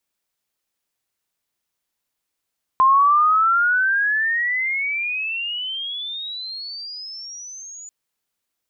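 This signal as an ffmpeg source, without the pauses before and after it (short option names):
-f lavfi -i "aevalsrc='pow(10,(-10.5-24.5*t/5.09)/20)*sin(2*PI*1040*5.09/(33*log(2)/12)*(exp(33*log(2)/12*t/5.09)-1))':d=5.09:s=44100"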